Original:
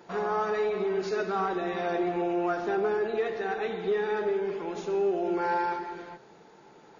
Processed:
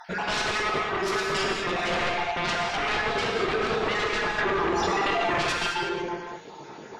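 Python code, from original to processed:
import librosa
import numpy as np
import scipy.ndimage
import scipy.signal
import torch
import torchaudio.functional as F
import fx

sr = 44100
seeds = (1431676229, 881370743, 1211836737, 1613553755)

y = fx.spec_dropout(x, sr, seeds[0], share_pct=47)
y = fx.fold_sine(y, sr, drive_db=16, ceiling_db=-18.0)
y = fx.rev_gated(y, sr, seeds[1], gate_ms=250, shape='flat', drr_db=-0.5)
y = fx.env_flatten(y, sr, amount_pct=100, at=(4.38, 5.42))
y = y * librosa.db_to_amplitude(-8.0)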